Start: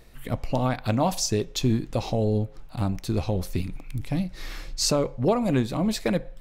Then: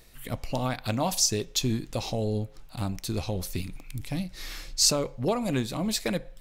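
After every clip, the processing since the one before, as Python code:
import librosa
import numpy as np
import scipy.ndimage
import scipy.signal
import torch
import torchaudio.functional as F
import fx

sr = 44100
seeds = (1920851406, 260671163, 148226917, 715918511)

y = fx.high_shelf(x, sr, hz=2600.0, db=10.5)
y = y * librosa.db_to_amplitude(-5.0)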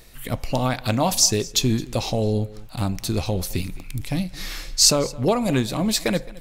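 y = x + 10.0 ** (-21.0 / 20.0) * np.pad(x, (int(216 * sr / 1000.0), 0))[:len(x)]
y = y * librosa.db_to_amplitude(6.5)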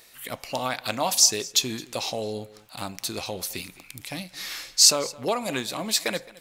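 y = fx.highpass(x, sr, hz=850.0, slope=6)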